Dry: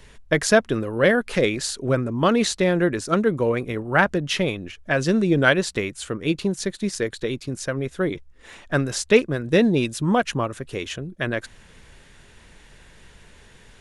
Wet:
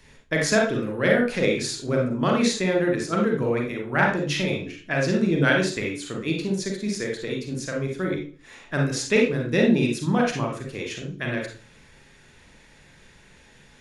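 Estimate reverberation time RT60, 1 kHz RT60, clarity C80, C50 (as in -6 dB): 0.40 s, 0.40 s, 10.0 dB, 3.5 dB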